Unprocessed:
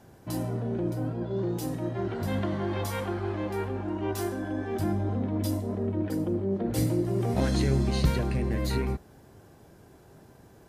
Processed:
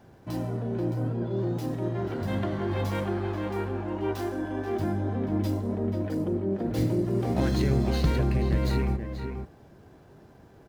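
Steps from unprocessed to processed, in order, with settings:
running median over 5 samples
slap from a distant wall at 83 metres, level −6 dB

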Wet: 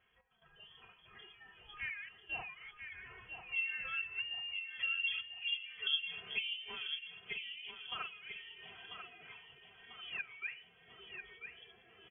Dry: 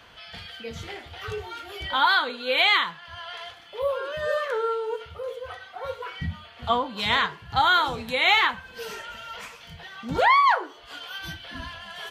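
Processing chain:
source passing by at 0:05.22, 24 m/s, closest 1.9 metres
treble cut that deepens with the level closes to 350 Hz, closed at −46 dBFS
comb filter 3.5 ms, depth 78%
gate pattern "x.xxxxxxxx.x" 72 BPM −12 dB
repeating echo 993 ms, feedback 45%, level −7.5 dB
voice inversion scrambler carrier 3,300 Hz
level +13 dB
MP3 24 kbit/s 16,000 Hz

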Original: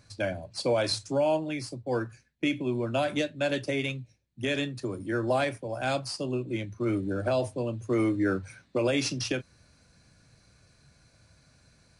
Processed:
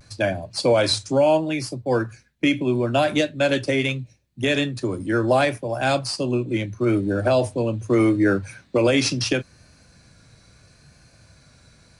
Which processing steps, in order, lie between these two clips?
pitch vibrato 0.75 Hz 46 cents
level +8 dB

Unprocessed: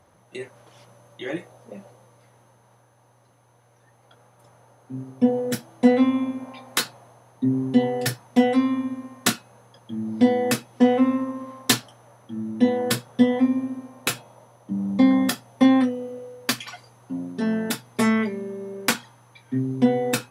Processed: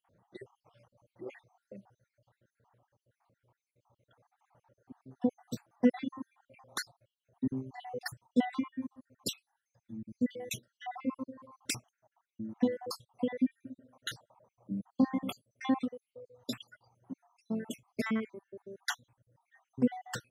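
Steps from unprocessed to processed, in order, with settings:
time-frequency cells dropped at random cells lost 61%
0:09.27–0:10.57: drawn EQ curve 100 Hz 0 dB, 1,300 Hz −12 dB, 3,000 Hz +3 dB
reverb reduction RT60 1.2 s
high-shelf EQ 11,000 Hz −10 dB
one half of a high-frequency compander decoder only
level −8.5 dB

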